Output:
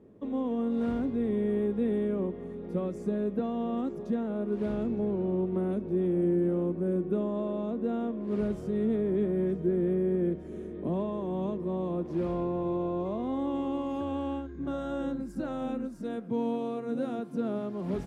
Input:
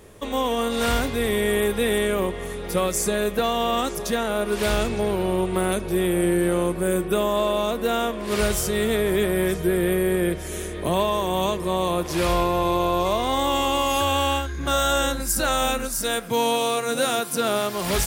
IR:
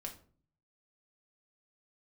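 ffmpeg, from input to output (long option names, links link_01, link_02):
-af "bandpass=frequency=240:width_type=q:width=1.9:csg=0"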